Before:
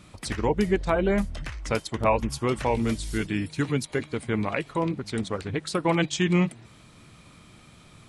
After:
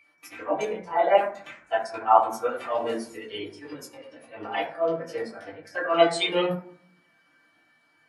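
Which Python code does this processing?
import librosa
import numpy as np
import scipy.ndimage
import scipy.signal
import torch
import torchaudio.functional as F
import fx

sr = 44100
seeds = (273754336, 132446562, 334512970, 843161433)

y = scipy.signal.sosfilt(scipy.signal.butter(2, 520.0, 'highpass', fs=sr, output='sos'), x)
y = fx.formant_shift(y, sr, semitones=4)
y = fx.auto_swell(y, sr, attack_ms=106.0)
y = y + 10.0 ** (-42.0 / 20.0) * np.sin(2.0 * np.pi * 2300.0 * np.arange(len(y)) / sr)
y = fx.rev_fdn(y, sr, rt60_s=0.84, lf_ratio=1.5, hf_ratio=0.4, size_ms=60.0, drr_db=-9.5)
y = fx.spectral_expand(y, sr, expansion=1.5)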